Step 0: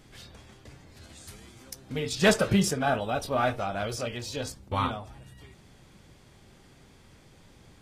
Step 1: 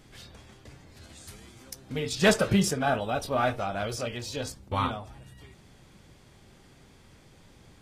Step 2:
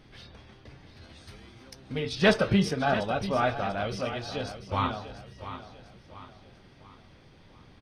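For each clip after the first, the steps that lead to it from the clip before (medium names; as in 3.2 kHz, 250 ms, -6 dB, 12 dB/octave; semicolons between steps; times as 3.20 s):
no audible change
Savitzky-Golay filter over 15 samples; on a send: feedback delay 693 ms, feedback 42%, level -12 dB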